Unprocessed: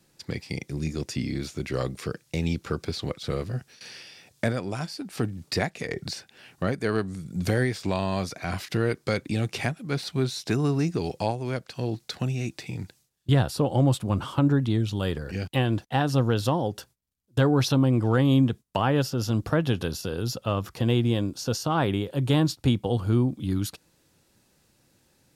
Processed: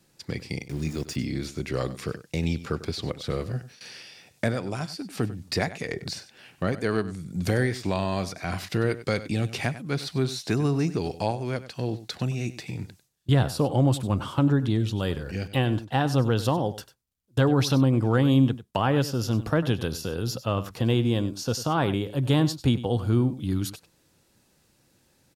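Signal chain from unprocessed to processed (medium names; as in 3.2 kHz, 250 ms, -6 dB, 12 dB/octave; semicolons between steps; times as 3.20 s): 0.68–1.16 s: small samples zeroed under -42 dBFS; on a send: delay 97 ms -15 dB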